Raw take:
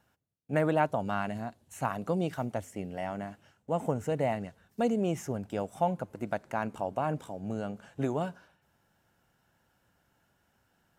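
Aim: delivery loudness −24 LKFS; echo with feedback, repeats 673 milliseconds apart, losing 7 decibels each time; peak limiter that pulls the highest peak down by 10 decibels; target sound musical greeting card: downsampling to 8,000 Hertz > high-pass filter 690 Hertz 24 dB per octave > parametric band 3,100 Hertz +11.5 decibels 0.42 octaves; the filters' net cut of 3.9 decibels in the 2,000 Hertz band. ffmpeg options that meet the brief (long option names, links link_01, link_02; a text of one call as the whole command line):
ffmpeg -i in.wav -af "equalizer=frequency=2000:width_type=o:gain=-7.5,alimiter=level_in=1dB:limit=-24dB:level=0:latency=1,volume=-1dB,aecho=1:1:673|1346|2019|2692|3365:0.447|0.201|0.0905|0.0407|0.0183,aresample=8000,aresample=44100,highpass=frequency=690:width=0.5412,highpass=frequency=690:width=1.3066,equalizer=frequency=3100:width_type=o:width=0.42:gain=11.5,volume=19.5dB" out.wav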